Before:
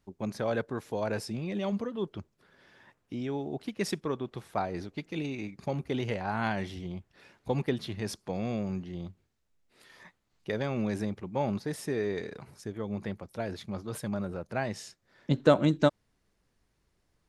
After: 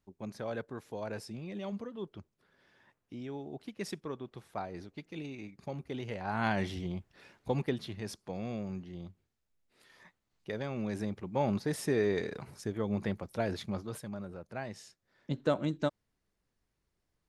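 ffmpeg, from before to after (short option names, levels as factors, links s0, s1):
-af "volume=2.99,afade=t=in:st=6.1:d=0.56:silence=0.334965,afade=t=out:st=6.66:d=1.36:silence=0.421697,afade=t=in:st=10.8:d=1.06:silence=0.421697,afade=t=out:st=13.63:d=0.42:silence=0.316228"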